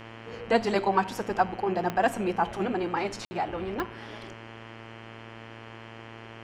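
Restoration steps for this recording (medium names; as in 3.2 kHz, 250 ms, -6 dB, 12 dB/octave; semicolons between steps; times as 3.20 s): de-click; de-hum 113.3 Hz, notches 28; room tone fill 3.25–3.31 s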